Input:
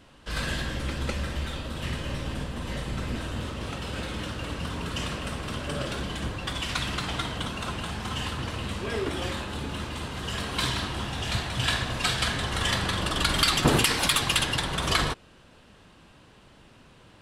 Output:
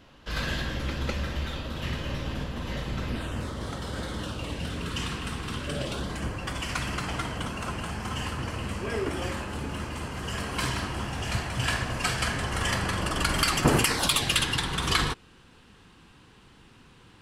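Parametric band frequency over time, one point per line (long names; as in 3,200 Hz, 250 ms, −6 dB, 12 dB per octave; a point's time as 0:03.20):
parametric band −14 dB 0.28 octaves
0:03.08 8,700 Hz
0:03.51 2,600 Hz
0:04.16 2,600 Hz
0:05.02 590 Hz
0:05.56 590 Hz
0:06.19 3,700 Hz
0:13.88 3,700 Hz
0:14.46 610 Hz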